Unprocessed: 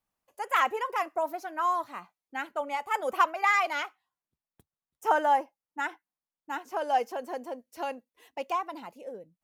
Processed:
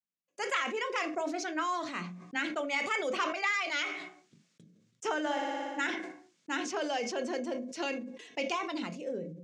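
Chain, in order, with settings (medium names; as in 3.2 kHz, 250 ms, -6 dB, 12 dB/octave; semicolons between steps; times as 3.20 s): 5.20–5.87 s: flutter echo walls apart 10 m, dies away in 1.2 s; gate with hold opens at -52 dBFS; elliptic band-pass 150–7100 Hz, stop band 40 dB; peaking EQ 860 Hz -14 dB 1.2 oct; compression 5:1, threshold -40 dBFS, peak gain reduction 13.5 dB; on a send at -9 dB: reverberation RT60 0.35 s, pre-delay 15 ms; on the sum: dynamic bell 4.1 kHz, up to +5 dB, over -57 dBFS, Q 0.79; decay stretcher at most 52 dB/s; trim +8.5 dB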